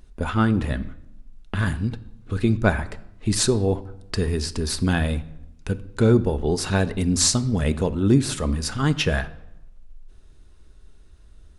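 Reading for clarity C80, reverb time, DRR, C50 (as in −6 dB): 19.0 dB, 0.85 s, 11.5 dB, 17.0 dB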